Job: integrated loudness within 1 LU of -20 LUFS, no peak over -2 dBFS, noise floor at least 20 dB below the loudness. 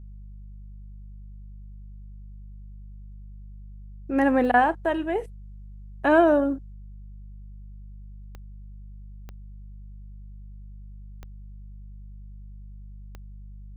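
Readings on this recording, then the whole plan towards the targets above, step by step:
clicks 5; hum 50 Hz; harmonics up to 200 Hz; hum level -39 dBFS; loudness -22.5 LUFS; peak -8.0 dBFS; loudness target -20.0 LUFS
-> de-click; de-hum 50 Hz, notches 4; gain +2.5 dB

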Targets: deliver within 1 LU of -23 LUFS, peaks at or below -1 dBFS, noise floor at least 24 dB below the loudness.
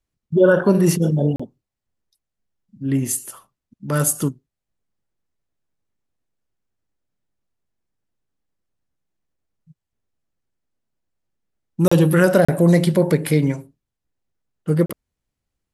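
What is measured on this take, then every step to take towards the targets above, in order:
dropouts 4; longest dropout 35 ms; loudness -18.0 LUFS; peak -3.0 dBFS; loudness target -23.0 LUFS
-> interpolate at 1.36/11.88/12.45/14.86, 35 ms; gain -5 dB

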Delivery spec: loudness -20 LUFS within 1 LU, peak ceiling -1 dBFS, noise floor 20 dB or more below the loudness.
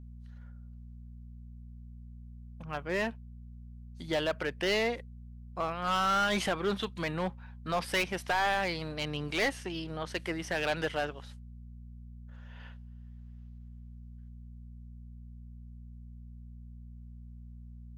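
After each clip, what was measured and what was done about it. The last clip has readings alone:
clipped 1.1%; flat tops at -23.5 dBFS; hum 60 Hz; harmonics up to 240 Hz; hum level -45 dBFS; loudness -32.0 LUFS; peak -23.5 dBFS; loudness target -20.0 LUFS
-> clip repair -23.5 dBFS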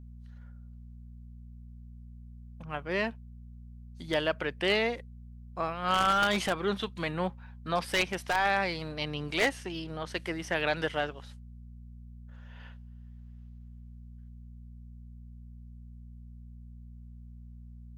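clipped 0.0%; hum 60 Hz; harmonics up to 240 Hz; hum level -45 dBFS
-> de-hum 60 Hz, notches 4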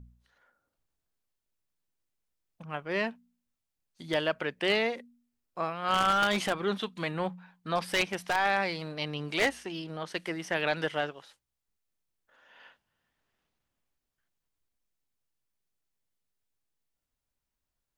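hum none; loudness -30.5 LUFS; peak -14.0 dBFS; loudness target -20.0 LUFS
-> gain +10.5 dB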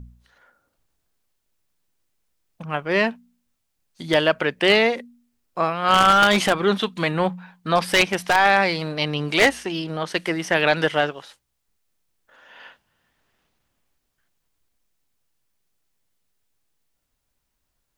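loudness -20.0 LUFS; peak -3.5 dBFS; noise floor -75 dBFS

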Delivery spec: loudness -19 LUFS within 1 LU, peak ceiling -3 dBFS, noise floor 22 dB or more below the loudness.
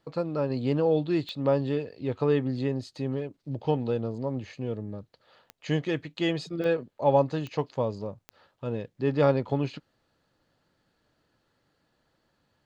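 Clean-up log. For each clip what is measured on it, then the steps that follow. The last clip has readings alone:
clicks 5; loudness -28.5 LUFS; peak -8.5 dBFS; loudness target -19.0 LUFS
-> de-click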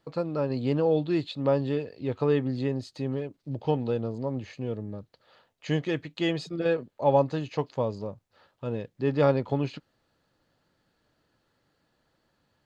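clicks 0; loudness -28.5 LUFS; peak -8.5 dBFS; loudness target -19.0 LUFS
-> gain +9.5 dB; limiter -3 dBFS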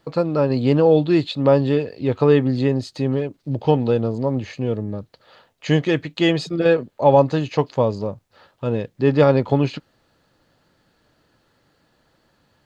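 loudness -19.5 LUFS; peak -3.0 dBFS; noise floor -65 dBFS

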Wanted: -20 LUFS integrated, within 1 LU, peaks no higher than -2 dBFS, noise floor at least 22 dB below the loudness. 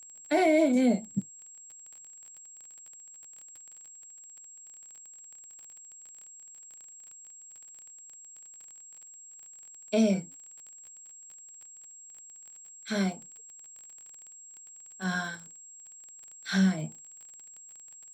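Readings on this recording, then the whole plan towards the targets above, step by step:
ticks 27/s; steady tone 7600 Hz; tone level -47 dBFS; loudness -28.0 LUFS; peak -14.0 dBFS; loudness target -20.0 LUFS
-> de-click; notch 7600 Hz, Q 30; gain +8 dB

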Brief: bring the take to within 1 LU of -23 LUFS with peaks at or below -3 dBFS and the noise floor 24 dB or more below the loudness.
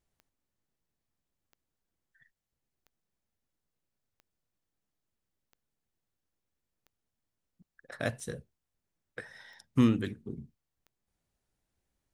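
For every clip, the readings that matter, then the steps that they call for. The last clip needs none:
clicks 9; loudness -31.5 LUFS; peak -12.0 dBFS; loudness target -23.0 LUFS
-> de-click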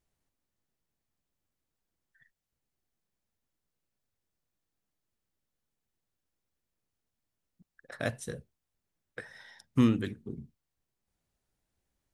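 clicks 0; loudness -31.5 LUFS; peak -12.0 dBFS; loudness target -23.0 LUFS
-> gain +8.5 dB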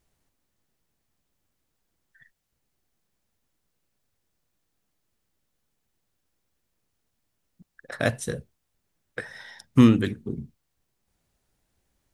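loudness -23.0 LUFS; peak -3.5 dBFS; noise floor -78 dBFS

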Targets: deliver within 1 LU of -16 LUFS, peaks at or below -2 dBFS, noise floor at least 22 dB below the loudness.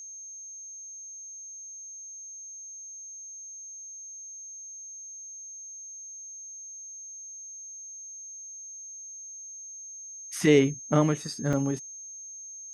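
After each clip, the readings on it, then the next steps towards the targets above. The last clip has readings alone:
dropouts 1; longest dropout 2.8 ms; steady tone 6400 Hz; tone level -40 dBFS; loudness -33.0 LUFS; peak -9.5 dBFS; loudness target -16.0 LUFS
-> interpolate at 11.53, 2.8 ms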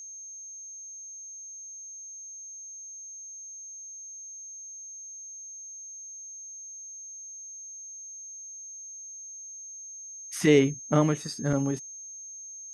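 dropouts 0; steady tone 6400 Hz; tone level -40 dBFS
-> notch 6400 Hz, Q 30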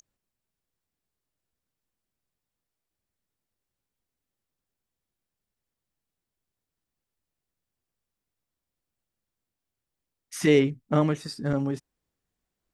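steady tone none; loudness -25.0 LUFS; peak -9.5 dBFS; loudness target -16.0 LUFS
-> gain +9 dB; limiter -2 dBFS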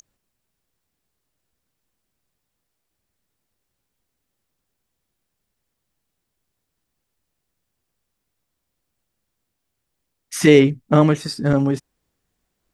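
loudness -16.5 LUFS; peak -2.0 dBFS; noise floor -78 dBFS

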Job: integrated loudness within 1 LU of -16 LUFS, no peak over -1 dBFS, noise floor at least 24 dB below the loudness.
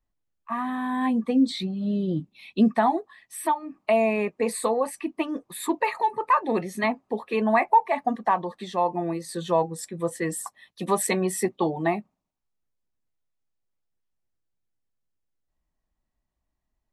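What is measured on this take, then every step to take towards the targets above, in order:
loudness -25.5 LUFS; peak -9.0 dBFS; loudness target -16.0 LUFS
-> gain +9.5 dB; limiter -1 dBFS

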